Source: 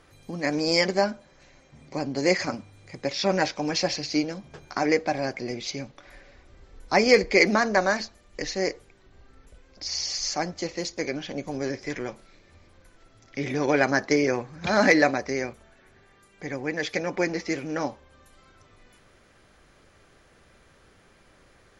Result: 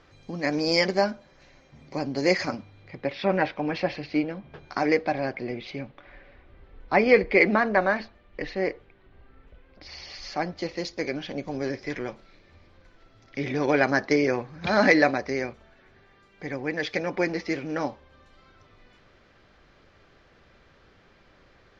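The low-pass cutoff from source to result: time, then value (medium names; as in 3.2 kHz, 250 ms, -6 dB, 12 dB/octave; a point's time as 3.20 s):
low-pass 24 dB/octave
2.46 s 5.8 kHz
3.16 s 3.1 kHz
4.44 s 3.1 kHz
4.74 s 5.1 kHz
5.58 s 3.3 kHz
10.07 s 3.3 kHz
10.79 s 5.1 kHz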